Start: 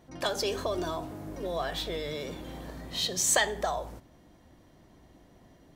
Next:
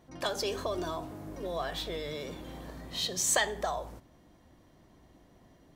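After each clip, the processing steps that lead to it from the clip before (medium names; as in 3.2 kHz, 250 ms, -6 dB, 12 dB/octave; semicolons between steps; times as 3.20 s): peaking EQ 1.1 kHz +2.5 dB 0.21 oct; trim -2.5 dB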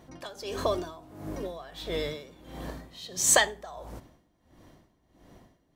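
logarithmic tremolo 1.5 Hz, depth 18 dB; trim +7 dB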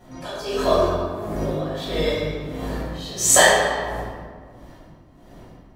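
reverberation RT60 1.8 s, pre-delay 3 ms, DRR -11.5 dB; trim -4 dB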